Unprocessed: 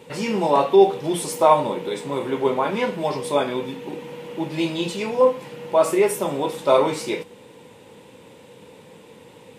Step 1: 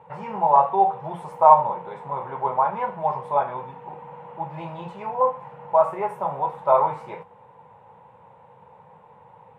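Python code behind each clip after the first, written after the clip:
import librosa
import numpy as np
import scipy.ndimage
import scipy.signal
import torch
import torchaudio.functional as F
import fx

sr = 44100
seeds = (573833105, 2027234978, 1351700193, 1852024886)

y = fx.curve_eq(x, sr, hz=(160.0, 290.0, 860.0, 4800.0), db=(0, -19, 11, -26))
y = F.gain(torch.from_numpy(y), -4.0).numpy()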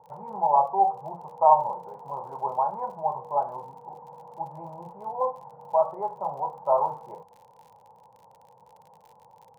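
y = fx.ladder_lowpass(x, sr, hz=1000.0, resonance_pct=45)
y = fx.dmg_crackle(y, sr, seeds[0], per_s=47.0, level_db=-45.0)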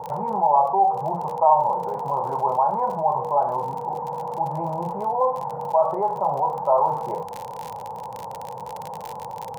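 y = fx.env_flatten(x, sr, amount_pct=50)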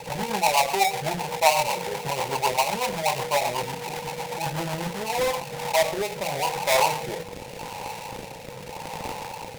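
y = fx.halfwave_hold(x, sr)
y = fx.rotary_switch(y, sr, hz=8.0, then_hz=0.85, switch_at_s=4.82)
y = F.gain(torch.from_numpy(y), -3.0).numpy()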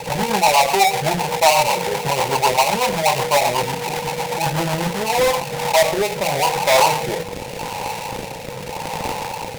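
y = 10.0 ** (-14.5 / 20.0) * np.tanh(x / 10.0 ** (-14.5 / 20.0))
y = F.gain(torch.from_numpy(y), 8.5).numpy()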